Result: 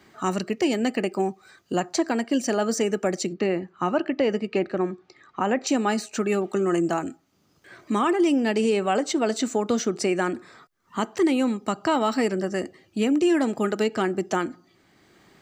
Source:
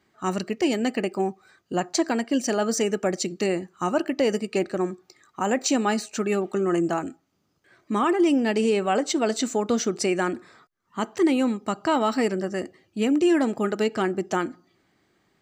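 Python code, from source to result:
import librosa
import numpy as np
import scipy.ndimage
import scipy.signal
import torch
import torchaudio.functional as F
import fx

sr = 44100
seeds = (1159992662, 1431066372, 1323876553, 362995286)

y = fx.lowpass(x, sr, hz=3000.0, slope=12, at=(3.33, 5.67))
y = fx.band_squash(y, sr, depth_pct=40)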